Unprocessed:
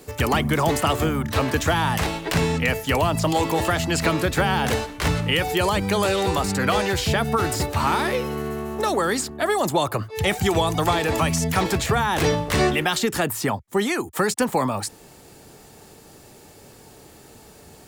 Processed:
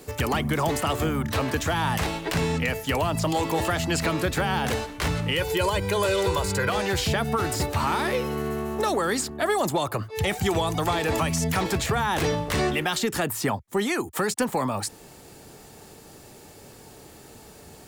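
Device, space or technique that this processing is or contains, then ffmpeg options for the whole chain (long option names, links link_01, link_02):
soft clipper into limiter: -filter_complex "[0:a]asettb=1/sr,asplit=3[link_01][link_02][link_03];[link_01]atrim=end=5.374[link_04];[link_02]atrim=start=5.37:end=6.7,asetpts=PTS-STARTPTS,afade=type=in:duration=0.004:curve=qsin,afade=type=out:start_time=1.326:duration=0.004:curve=qsin,aecho=1:1:2:0.8,atrim=end_sample=58653[link_05];[link_03]atrim=start=6.696[link_06];[link_04][link_05]acrossfade=duration=0.004:curve1=hsin:curve2=qsin[link_07];[link_07][link_06]acrossfade=duration=0.004:curve1=qsin:curve2=hsin,asoftclip=type=tanh:threshold=-8.5dB,alimiter=limit=-15.5dB:level=0:latency=1:release=400"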